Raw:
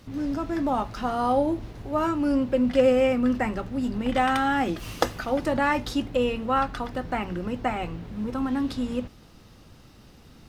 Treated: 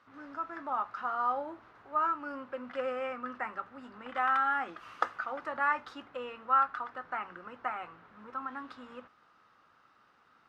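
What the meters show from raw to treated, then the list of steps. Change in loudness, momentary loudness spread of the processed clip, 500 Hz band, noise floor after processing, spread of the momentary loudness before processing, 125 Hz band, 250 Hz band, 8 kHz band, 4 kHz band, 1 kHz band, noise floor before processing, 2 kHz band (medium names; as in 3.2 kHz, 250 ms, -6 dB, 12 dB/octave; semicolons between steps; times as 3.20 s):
-8.0 dB, 17 LU, -15.0 dB, -66 dBFS, 9 LU, under -25 dB, -22.5 dB, under -20 dB, -15.5 dB, -4.0 dB, -51 dBFS, -4.5 dB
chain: band-pass filter 1.3 kHz, Q 3.3; trim +1.5 dB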